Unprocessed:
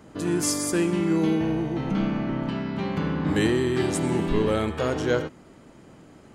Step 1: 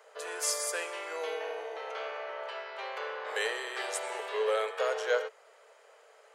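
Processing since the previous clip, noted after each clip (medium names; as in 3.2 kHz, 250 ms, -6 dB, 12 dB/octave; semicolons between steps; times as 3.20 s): rippled Chebyshev high-pass 430 Hz, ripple 3 dB; trim -1.5 dB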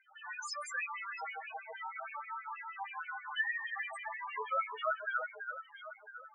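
LFO high-pass sine 6.3 Hz 810–2600 Hz; echo whose repeats swap between lows and highs 334 ms, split 1.8 kHz, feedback 64%, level -6 dB; loudest bins only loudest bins 4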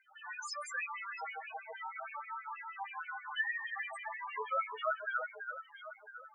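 bass shelf 360 Hz +5 dB; trim -1 dB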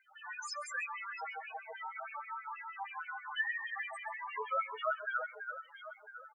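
delay 134 ms -22.5 dB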